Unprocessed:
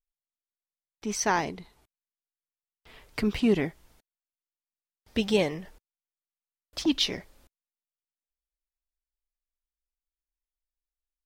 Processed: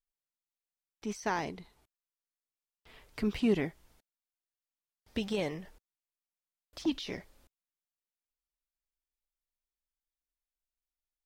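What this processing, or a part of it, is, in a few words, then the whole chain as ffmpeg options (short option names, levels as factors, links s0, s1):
de-esser from a sidechain: -filter_complex "[0:a]asplit=2[s0][s1];[s1]highpass=6200,apad=whole_len=496370[s2];[s0][s2]sidechaincompress=threshold=0.00708:ratio=5:attack=1.2:release=39,volume=0.596"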